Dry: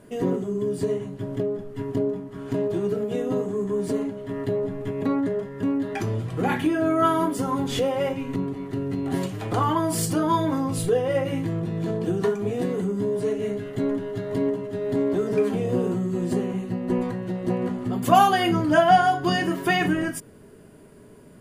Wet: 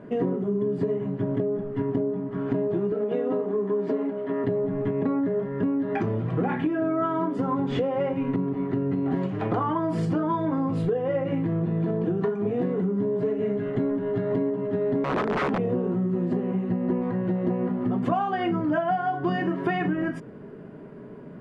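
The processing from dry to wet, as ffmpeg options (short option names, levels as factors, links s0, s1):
-filter_complex "[0:a]asettb=1/sr,asplit=3[s0][s1][s2];[s0]atrim=end=2.924[s3];[s1]atrim=start=2.92:end=4.44,asetpts=PTS-STARTPTS,afade=t=in:d=0.004:c=qsin,afade=t=out:st=1.516:d=0.004:c=qsin,highpass=290,lowpass=5800[s4];[s2]atrim=start=4.436[s5];[s3][s4]acrossfade=d=0.004:c1=hsin:c2=qsin[s6];[s6][s5]acrossfade=d=0.004:c1=qsin:c2=hsin,asettb=1/sr,asplit=3[s7][s8][s9];[s7]atrim=end=15.044[s10];[s8]atrim=start=15.04:end=15.6,asetpts=PTS-STARTPTS,afade=t=in:d=0.004:c=qsin,afade=t=out:st=0.556:d=0.004:c=qsin,aeval=exprs='(mod(8.91*val(0)+1,2)-1)/8.91':c=same[s11];[s9]atrim=start=15.596[s12];[s10][s11]acrossfade=d=0.004:c1=hsin:c2=qsin[s13];[s13][s12]acrossfade=d=0.004:c1=qsin:c2=hsin,lowpass=1800,lowshelf=f=110:t=q:w=1.5:g=-8.5,acompressor=threshold=0.0398:ratio=10,volume=2"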